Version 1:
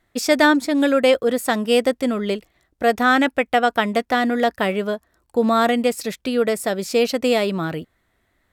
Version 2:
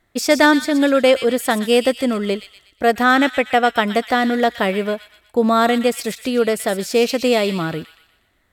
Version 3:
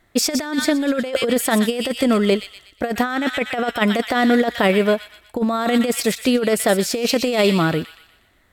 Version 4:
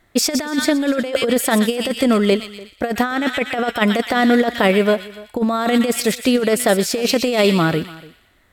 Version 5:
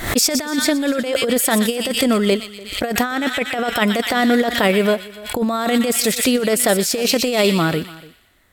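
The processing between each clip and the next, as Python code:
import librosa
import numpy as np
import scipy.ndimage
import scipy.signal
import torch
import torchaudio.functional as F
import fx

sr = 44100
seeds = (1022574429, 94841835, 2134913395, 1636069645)

y1 = fx.echo_wet_highpass(x, sr, ms=121, feedback_pct=45, hz=2400.0, wet_db=-7)
y1 = F.gain(torch.from_numpy(y1), 2.0).numpy()
y2 = fx.over_compress(y1, sr, threshold_db=-18.0, ratio=-0.5)
y2 = F.gain(torch.from_numpy(y2), 1.5).numpy()
y3 = y2 + 10.0 ** (-21.0 / 20.0) * np.pad(y2, (int(292 * sr / 1000.0), 0))[:len(y2)]
y3 = F.gain(torch.from_numpy(y3), 1.5).numpy()
y4 = fx.high_shelf(y3, sr, hz=5000.0, db=7.0)
y4 = fx.pre_swell(y4, sr, db_per_s=90.0)
y4 = F.gain(torch.from_numpy(y4), -1.5).numpy()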